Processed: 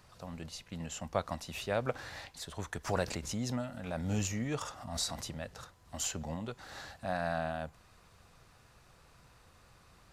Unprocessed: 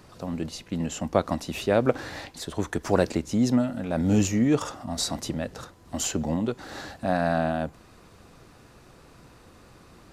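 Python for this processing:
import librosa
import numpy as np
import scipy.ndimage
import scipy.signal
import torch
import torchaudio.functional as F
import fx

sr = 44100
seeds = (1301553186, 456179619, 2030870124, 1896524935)

y = fx.peak_eq(x, sr, hz=300.0, db=-11.5, octaves=1.4)
y = fx.pre_swell(y, sr, db_per_s=71.0, at=(2.87, 5.25), fade=0.02)
y = y * 10.0 ** (-6.5 / 20.0)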